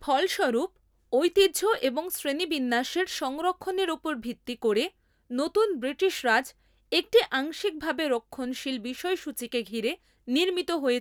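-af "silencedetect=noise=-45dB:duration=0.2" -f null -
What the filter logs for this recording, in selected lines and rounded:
silence_start: 0.67
silence_end: 1.13 | silence_duration: 0.45
silence_start: 4.89
silence_end: 5.30 | silence_duration: 0.42
silence_start: 6.51
silence_end: 6.92 | silence_duration: 0.41
silence_start: 9.95
silence_end: 10.28 | silence_duration: 0.32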